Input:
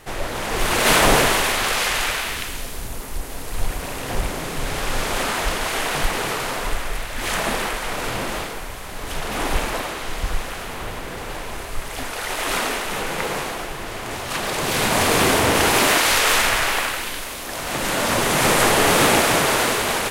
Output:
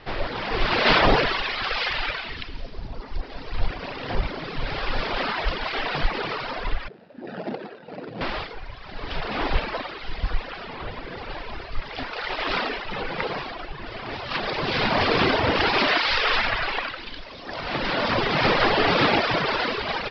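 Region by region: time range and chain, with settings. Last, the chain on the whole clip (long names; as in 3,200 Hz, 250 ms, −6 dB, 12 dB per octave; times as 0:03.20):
0:06.88–0:08.21: running median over 41 samples + high-pass filter 150 Hz 24 dB per octave
whole clip: Butterworth low-pass 5,200 Hz 96 dB per octave; reverb reduction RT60 1.9 s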